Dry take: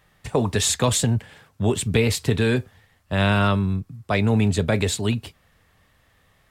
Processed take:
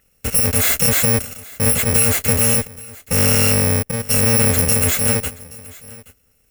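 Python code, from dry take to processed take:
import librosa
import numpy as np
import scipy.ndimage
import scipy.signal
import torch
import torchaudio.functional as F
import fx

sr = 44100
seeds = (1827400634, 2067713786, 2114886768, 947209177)

p1 = fx.bit_reversed(x, sr, seeds[0], block=128)
p2 = fx.peak_eq(p1, sr, hz=130.0, db=-4.5, octaves=0.77)
p3 = fx.fuzz(p2, sr, gain_db=46.0, gate_db=-44.0)
p4 = p2 + F.gain(torch.from_numpy(p3), -6.0).numpy()
p5 = fx.graphic_eq(p4, sr, hz=(500, 1000, 2000, 4000), db=(5, -6, 5, -7))
y = p5 + 10.0 ** (-21.0 / 20.0) * np.pad(p5, (int(825 * sr / 1000.0), 0))[:len(p5)]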